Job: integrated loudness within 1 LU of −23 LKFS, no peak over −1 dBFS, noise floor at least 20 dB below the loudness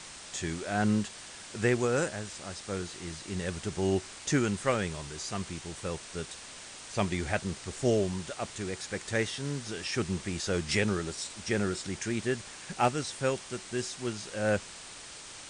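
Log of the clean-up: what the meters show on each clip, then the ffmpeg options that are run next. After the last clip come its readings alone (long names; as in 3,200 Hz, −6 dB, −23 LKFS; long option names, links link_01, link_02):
background noise floor −46 dBFS; target noise floor −53 dBFS; integrated loudness −32.5 LKFS; sample peak −15.0 dBFS; target loudness −23.0 LKFS
→ -af "afftdn=noise_reduction=7:noise_floor=-46"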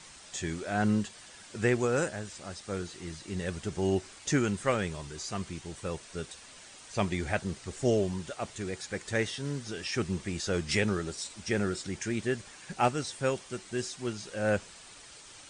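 background noise floor −51 dBFS; target noise floor −53 dBFS
→ -af "afftdn=noise_reduction=6:noise_floor=-51"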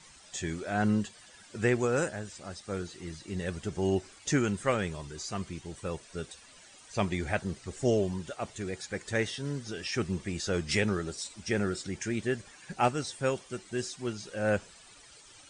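background noise floor −55 dBFS; integrated loudness −32.5 LKFS; sample peak −14.5 dBFS; target loudness −23.0 LKFS
→ -af "volume=9.5dB"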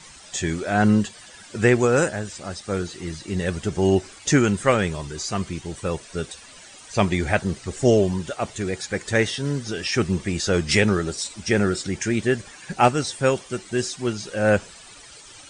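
integrated loudness −23.0 LKFS; sample peak −5.0 dBFS; background noise floor −45 dBFS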